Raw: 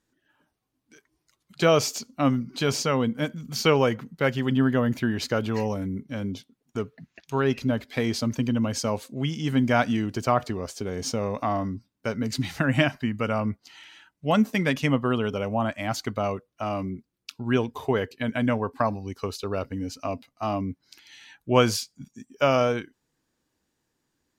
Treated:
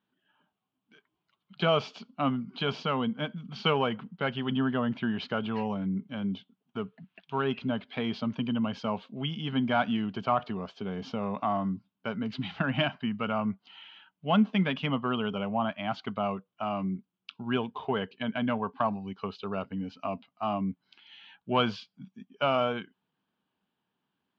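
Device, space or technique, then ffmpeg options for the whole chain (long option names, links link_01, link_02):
overdrive pedal into a guitar cabinet: -filter_complex "[0:a]asplit=2[link_01][link_02];[link_02]highpass=frequency=720:poles=1,volume=12dB,asoftclip=type=tanh:threshold=-4dB[link_03];[link_01][link_03]amix=inputs=2:normalize=0,lowpass=frequency=1300:poles=1,volume=-6dB,highpass=99,equalizer=frequency=190:width_type=q:width=4:gain=10,equalizer=frequency=320:width_type=q:width=4:gain=-7,equalizer=frequency=520:width_type=q:width=4:gain=-8,equalizer=frequency=1900:width_type=q:width=4:gain=-8,equalizer=frequency=3100:width_type=q:width=4:gain=8,lowpass=frequency=3900:width=0.5412,lowpass=frequency=3900:width=1.3066,volume=-4.5dB"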